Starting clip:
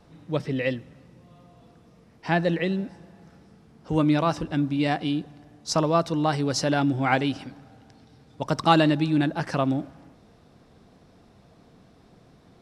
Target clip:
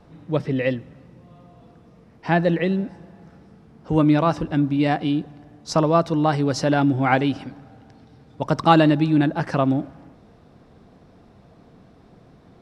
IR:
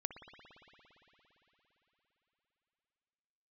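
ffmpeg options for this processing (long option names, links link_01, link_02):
-af "highshelf=frequency=3100:gain=-9,volume=4.5dB"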